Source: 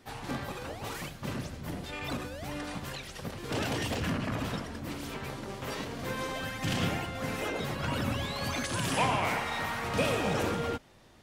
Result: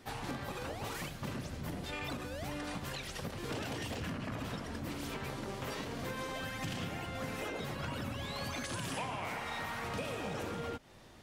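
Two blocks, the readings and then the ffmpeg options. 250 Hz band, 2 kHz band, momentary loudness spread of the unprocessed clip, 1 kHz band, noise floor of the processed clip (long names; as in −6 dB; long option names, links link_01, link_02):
−6.0 dB, −6.0 dB, 10 LU, −7.0 dB, −47 dBFS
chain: -af "acompressor=threshold=-38dB:ratio=6,volume=1.5dB"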